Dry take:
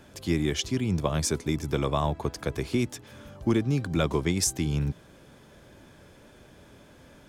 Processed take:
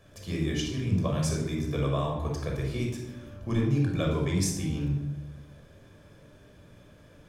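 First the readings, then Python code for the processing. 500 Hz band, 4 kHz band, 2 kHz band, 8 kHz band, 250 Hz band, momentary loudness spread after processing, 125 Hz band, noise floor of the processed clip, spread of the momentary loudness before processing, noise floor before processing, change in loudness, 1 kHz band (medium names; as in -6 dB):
-3.0 dB, -4.5 dB, -3.5 dB, -5.5 dB, -2.0 dB, 11 LU, +1.0 dB, -55 dBFS, 7 LU, -54 dBFS, -1.5 dB, -4.0 dB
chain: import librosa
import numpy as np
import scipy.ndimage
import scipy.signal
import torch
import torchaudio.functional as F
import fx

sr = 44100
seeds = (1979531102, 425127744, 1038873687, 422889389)

y = fx.room_shoebox(x, sr, seeds[0], volume_m3=3000.0, walls='furnished', distance_m=5.8)
y = y * librosa.db_to_amplitude(-9.0)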